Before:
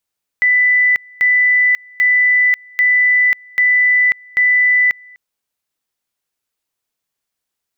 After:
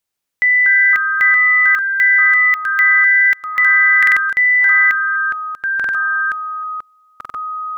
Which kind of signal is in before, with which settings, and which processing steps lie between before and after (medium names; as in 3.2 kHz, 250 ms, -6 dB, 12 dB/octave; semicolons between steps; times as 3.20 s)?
two-level tone 1.99 kHz -9 dBFS, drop 28.5 dB, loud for 0.54 s, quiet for 0.25 s, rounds 6
painted sound noise, 3.55–3.76 s, 1–2.1 kHz -34 dBFS; ever faster or slower copies 132 ms, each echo -4 st, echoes 2, each echo -6 dB; buffer glitch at 3.98/5.75/7.16 s, samples 2048, times 3